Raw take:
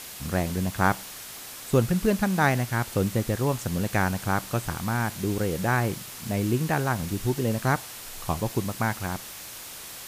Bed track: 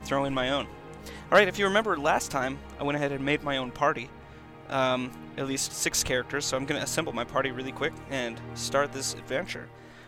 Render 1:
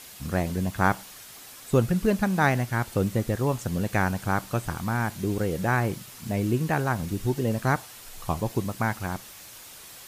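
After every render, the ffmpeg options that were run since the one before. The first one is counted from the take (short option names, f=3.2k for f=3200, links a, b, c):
-af "afftdn=nr=6:nf=-41"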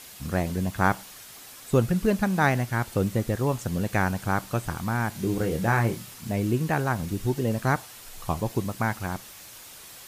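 -filter_complex "[0:a]asettb=1/sr,asplit=3[a][b][c];[a]atrim=end=5.124[d];[b]atrim=start=5.12:end=6.14,asetpts=PTS-STARTPTS,afade=t=in:d=0.004:c=qsin,afade=t=out:st=1.016:d=0.004:c=qsin,asplit=2[e][f];[f]adelay=26,volume=-6dB[g];[e][g]amix=inputs=2:normalize=0,atrim=end_sample=44982[h];[c]atrim=start=6.136[i];[d][h]acrossfade=d=0.004:c1=hsin:c2=qsin[j];[j][i]acrossfade=d=0.004:c1=qsin:c2=hsin"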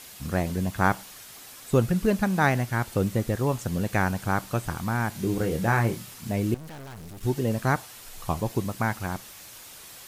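-filter_complex "[0:a]asettb=1/sr,asplit=3[a][b][c];[a]atrim=end=6.544[d];[b]atrim=start=6.54:end=7.23,asetpts=PTS-STARTPTS,afade=t=in:d=0.004:c=qsin,afade=t=out:st=0.686:d=0.004:c=qsin,aeval=exprs='(tanh(100*val(0)+0.65)-tanh(0.65))/100':c=same[e];[c]atrim=start=7.226[f];[d][e]acrossfade=d=0.004:c1=hsin:c2=qsin[g];[g][f]acrossfade=d=0.004:c1=qsin:c2=hsin"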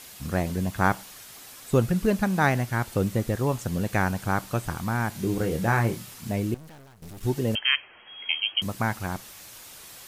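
-filter_complex "[0:a]asettb=1/sr,asplit=3[a][b][c];[a]atrim=end=7.554[d];[b]atrim=start=7.55:end=8.62,asetpts=PTS-STARTPTS,afade=t=in:d=0.004:c=qsin,afade=t=out:st=1.066:d=0.004:c=qsin,lowpass=f=2.8k:t=q:w=0.5098,lowpass=f=2.8k:t=q:w=0.6013,lowpass=f=2.8k:t=q:w=0.9,lowpass=f=2.8k:t=q:w=2.563,afreqshift=-3300[e];[c]atrim=start=8.616[f];[d][e]acrossfade=d=0.004:c1=hsin:c2=qsin[g];[g][f]acrossfade=d=0.004:c1=qsin:c2=hsin,asplit=2[h][i];[h]atrim=end=7.02,asetpts=PTS-STARTPTS,afade=t=out:st=6.32:d=0.7:silence=0.158489[j];[i]atrim=start=7.02,asetpts=PTS-STARTPTS,afade=t=in:d=0.004:c=hsin:silence=0.158489[k];[j][k]concat=n=2:v=0:a=1"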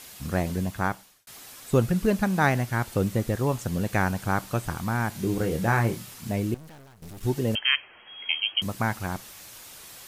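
-filter_complex "[0:a]asplit=2[a][b];[a]atrim=end=1.27,asetpts=PTS-STARTPTS,afade=t=out:st=0.57:d=0.7[c];[b]atrim=start=1.27,asetpts=PTS-STARTPTS,afade=t=in:d=0.004:c=hsin[d];[c][d]concat=n=2:v=0:a=1"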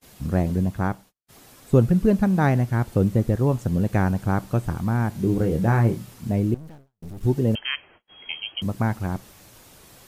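-af "agate=range=-34dB:threshold=-46dB:ratio=16:detection=peak,tiltshelf=f=780:g=6.5"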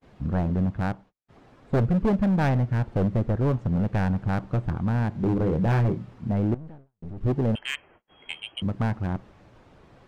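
-af "adynamicsmooth=sensitivity=1:basefreq=1.9k,asoftclip=type=hard:threshold=-18.5dB"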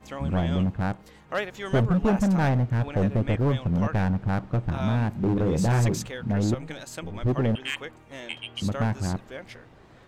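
-filter_complex "[1:a]volume=-9.5dB[a];[0:a][a]amix=inputs=2:normalize=0"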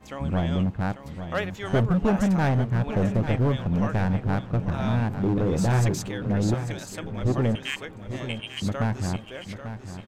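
-af "aecho=1:1:843|1686|2529|3372:0.299|0.116|0.0454|0.0177"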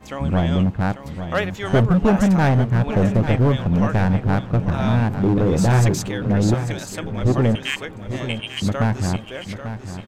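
-af "volume=6dB"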